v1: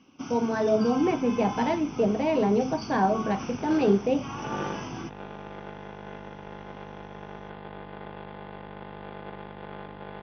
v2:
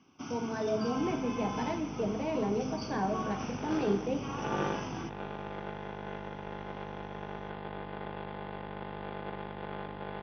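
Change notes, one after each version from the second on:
speech −12.0 dB
first sound −4.5 dB
reverb: on, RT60 2.4 s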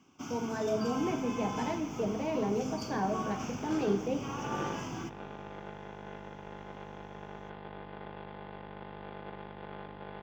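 second sound −4.5 dB
master: remove linear-phase brick-wall low-pass 6,200 Hz

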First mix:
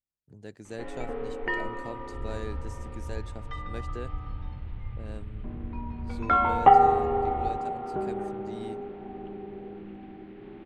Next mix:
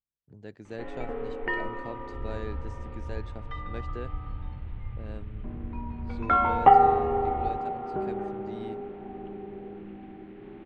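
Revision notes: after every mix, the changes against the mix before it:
master: add low-pass filter 3,800 Hz 12 dB per octave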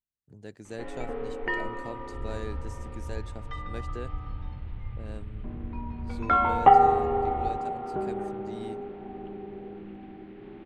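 master: remove low-pass filter 3,800 Hz 12 dB per octave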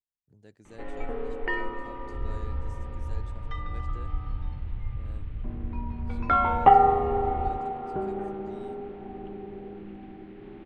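speech −10.0 dB
master: add low-shelf EQ 70 Hz +6 dB

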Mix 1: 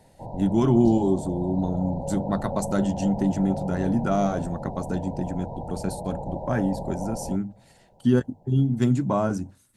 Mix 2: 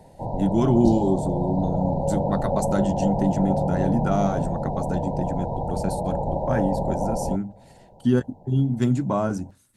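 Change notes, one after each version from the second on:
background +7.5 dB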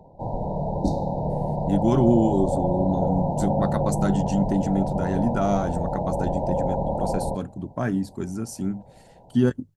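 speech: entry +1.30 s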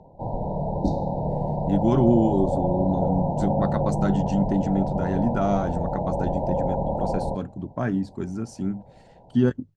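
master: add high-frequency loss of the air 97 metres

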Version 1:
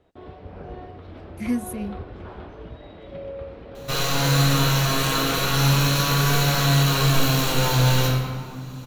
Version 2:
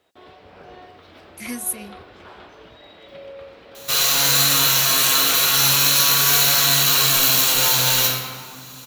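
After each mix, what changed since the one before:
master: add spectral tilt +4 dB per octave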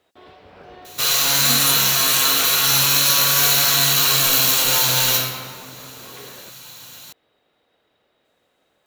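second sound: entry −2.90 s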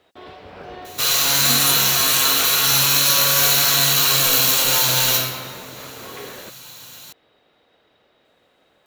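first sound +6.0 dB

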